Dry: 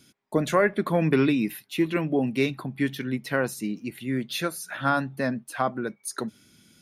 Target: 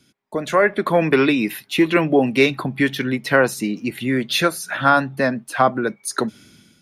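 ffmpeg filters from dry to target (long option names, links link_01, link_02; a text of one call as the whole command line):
ffmpeg -i in.wav -filter_complex "[0:a]acrossover=split=360[link_01][link_02];[link_01]acompressor=threshold=-35dB:ratio=4[link_03];[link_03][link_02]amix=inputs=2:normalize=0,highshelf=frequency=8600:gain=-8,dynaudnorm=framelen=230:gausssize=5:maxgain=14dB" out.wav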